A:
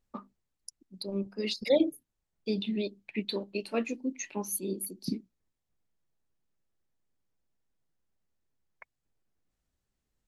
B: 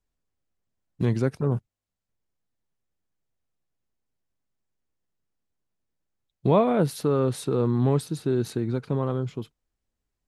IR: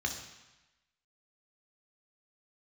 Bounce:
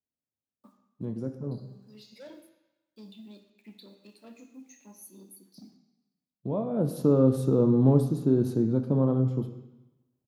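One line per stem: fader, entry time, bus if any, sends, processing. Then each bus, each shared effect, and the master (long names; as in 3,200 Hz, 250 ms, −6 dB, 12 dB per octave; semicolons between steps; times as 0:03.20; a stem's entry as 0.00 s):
−14.0 dB, 0.50 s, send −9 dB, soft clipping −27 dBFS, distortion −9 dB; bit reduction 10 bits; automatic ducking −8 dB, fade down 0.35 s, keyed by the second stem
0:06.68 −13 dB → 0:06.94 −1 dB, 0.00 s, send −10 dB, octave-band graphic EQ 125/250/500/2,000/4,000/8,000 Hz +3/+4/+5/−10/−7/−10 dB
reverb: on, RT60 1.0 s, pre-delay 3 ms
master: high-pass filter 120 Hz 12 dB per octave; high-shelf EQ 6,500 Hz +4.5 dB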